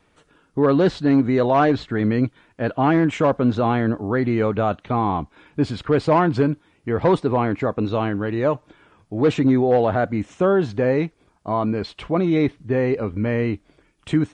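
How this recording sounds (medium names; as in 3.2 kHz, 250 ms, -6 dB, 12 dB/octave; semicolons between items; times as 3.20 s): noise floor -62 dBFS; spectral tilt -5.5 dB/octave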